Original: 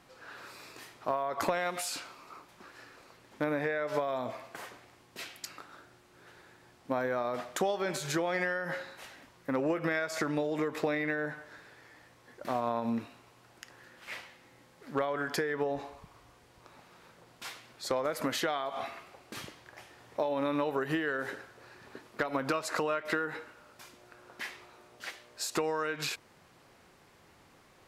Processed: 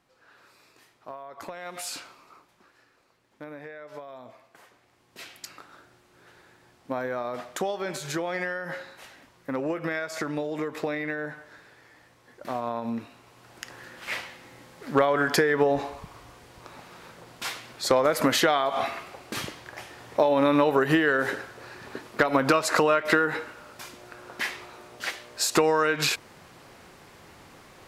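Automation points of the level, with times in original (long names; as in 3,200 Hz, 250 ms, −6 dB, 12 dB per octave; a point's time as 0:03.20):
0:01.56 −9 dB
0:01.88 +2 dB
0:02.85 −10 dB
0:04.67 −10 dB
0:05.31 +1 dB
0:13.00 +1 dB
0:13.68 +10 dB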